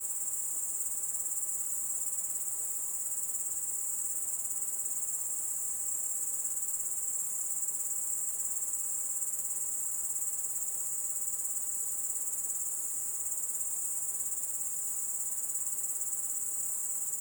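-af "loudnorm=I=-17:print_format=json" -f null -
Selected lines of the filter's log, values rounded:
"input_i" : "-31.1",
"input_tp" : "-18.8",
"input_lra" : "0.5",
"input_thresh" : "-41.1",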